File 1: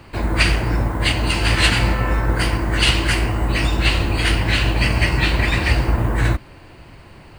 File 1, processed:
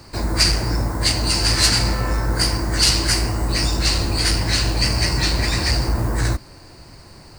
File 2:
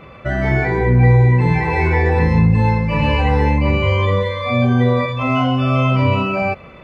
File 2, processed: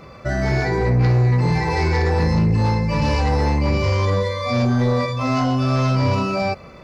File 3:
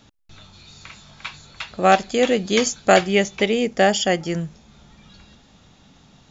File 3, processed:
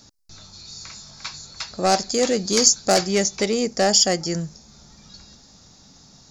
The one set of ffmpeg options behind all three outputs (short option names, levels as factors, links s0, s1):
-af "aeval=exprs='0.891*(cos(1*acos(clip(val(0)/0.891,-1,1)))-cos(1*PI/2))+0.2*(cos(5*acos(clip(val(0)/0.891,-1,1)))-cos(5*PI/2))':c=same,highshelf=f=3900:t=q:w=3:g=8,volume=0.422"